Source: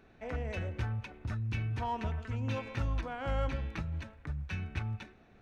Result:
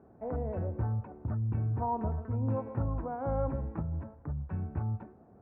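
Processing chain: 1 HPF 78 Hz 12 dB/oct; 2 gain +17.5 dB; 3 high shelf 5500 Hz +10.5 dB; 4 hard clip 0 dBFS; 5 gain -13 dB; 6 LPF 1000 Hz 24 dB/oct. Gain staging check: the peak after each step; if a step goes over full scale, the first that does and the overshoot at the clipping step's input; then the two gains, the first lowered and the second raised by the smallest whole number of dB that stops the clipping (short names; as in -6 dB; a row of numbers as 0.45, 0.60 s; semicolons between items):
-22.5, -5.0, -5.0, -5.0, -18.0, -19.5 dBFS; no overload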